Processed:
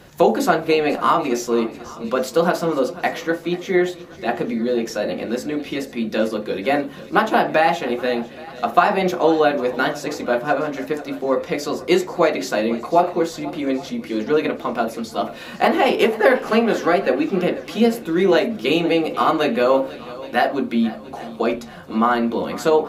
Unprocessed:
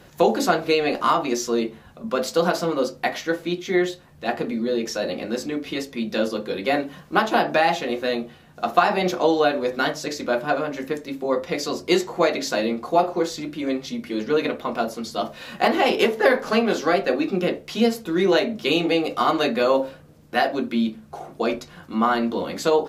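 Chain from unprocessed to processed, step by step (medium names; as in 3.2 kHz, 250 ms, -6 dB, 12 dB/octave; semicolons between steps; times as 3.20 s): shuffle delay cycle 820 ms, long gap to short 1.5:1, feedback 36%, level -18 dB; dynamic bell 4.8 kHz, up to -6 dB, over -43 dBFS, Q 1; trim +3 dB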